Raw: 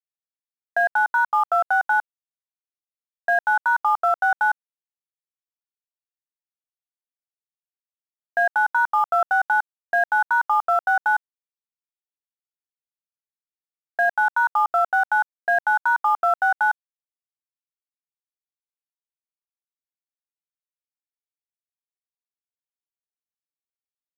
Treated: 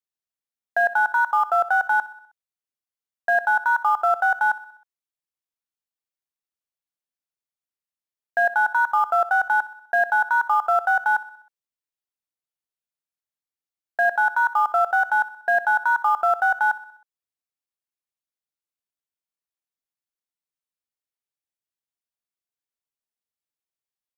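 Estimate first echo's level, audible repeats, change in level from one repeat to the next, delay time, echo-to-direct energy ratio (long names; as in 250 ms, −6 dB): −17.5 dB, 4, −5.0 dB, 63 ms, −16.0 dB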